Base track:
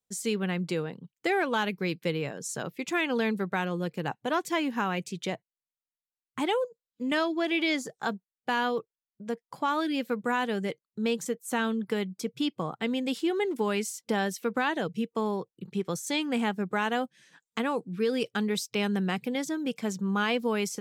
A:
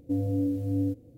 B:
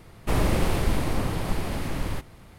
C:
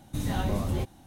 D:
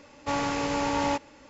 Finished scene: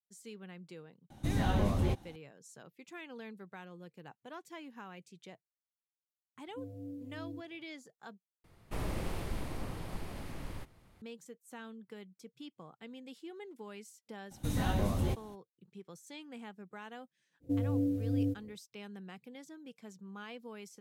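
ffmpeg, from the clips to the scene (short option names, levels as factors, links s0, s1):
-filter_complex "[3:a]asplit=2[s0][s1];[1:a]asplit=2[s2][s3];[0:a]volume=0.106[s4];[s0]highshelf=f=7800:g=-9.5[s5];[s2]highpass=99[s6];[s4]asplit=2[s7][s8];[s7]atrim=end=8.444[s9];[2:a]atrim=end=2.58,asetpts=PTS-STARTPTS,volume=0.2[s10];[s8]atrim=start=11.016[s11];[s5]atrim=end=1.06,asetpts=PTS-STARTPTS,volume=0.841,afade=t=in:d=0.004:c=hsin,afade=t=out:st=1.056:d=0.004:c=hsin,adelay=1100[s12];[s6]atrim=end=1.17,asetpts=PTS-STARTPTS,volume=0.141,afade=t=in:d=0.004:c=hsin,afade=t=out:st=1.166:d=0.004:c=hsin,adelay=6470[s13];[s1]atrim=end=1.06,asetpts=PTS-STARTPTS,volume=0.708,afade=t=in:d=0.02,afade=t=out:st=1.04:d=0.02,adelay=14300[s14];[s3]atrim=end=1.17,asetpts=PTS-STARTPTS,volume=0.631,afade=t=in:d=0.05,afade=t=out:st=1.12:d=0.05,adelay=17400[s15];[s9][s10]acrossfade=d=0.004:c1=hsin:c2=hsin[s16];[s16][s11]acrossfade=d=0.004:c1=hsin:c2=hsin[s17];[s17][s12][s13][s14][s15]amix=inputs=5:normalize=0"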